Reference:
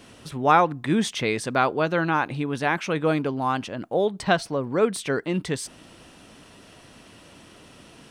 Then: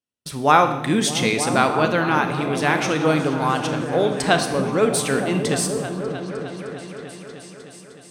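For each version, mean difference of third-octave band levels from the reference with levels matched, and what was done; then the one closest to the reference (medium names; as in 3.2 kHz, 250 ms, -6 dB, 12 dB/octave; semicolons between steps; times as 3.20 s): 8.5 dB: gate -40 dBFS, range -49 dB; treble shelf 4.2 kHz +10 dB; delay with an opening low-pass 307 ms, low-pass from 200 Hz, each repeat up 1 oct, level -3 dB; Schroeder reverb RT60 0.89 s, combs from 26 ms, DRR 7.5 dB; trim +2 dB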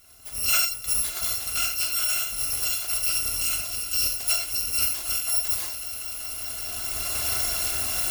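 18.0 dB: bit-reversed sample order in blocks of 256 samples; recorder AGC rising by 14 dB/s; on a send: echo with a slow build-up 190 ms, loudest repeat 5, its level -17 dB; on the sum: gated-style reverb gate 110 ms flat, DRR 2.5 dB; trim -6.5 dB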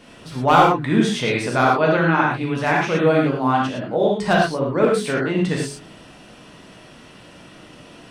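5.5 dB: treble shelf 5.7 kHz -8.5 dB; de-hum 47.13 Hz, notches 9; hard clipper -11 dBFS, distortion -21 dB; gated-style reverb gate 140 ms flat, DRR -3 dB; trim +1.5 dB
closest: third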